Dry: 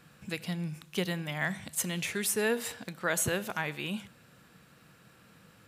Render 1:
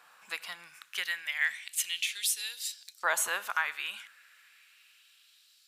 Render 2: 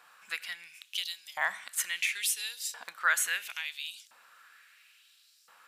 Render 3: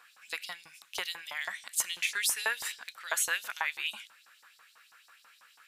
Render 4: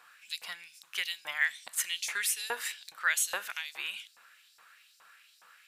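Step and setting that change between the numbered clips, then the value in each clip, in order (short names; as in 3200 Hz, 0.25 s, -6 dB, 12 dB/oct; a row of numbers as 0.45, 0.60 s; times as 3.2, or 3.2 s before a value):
LFO high-pass, rate: 0.33, 0.73, 6.1, 2.4 Hz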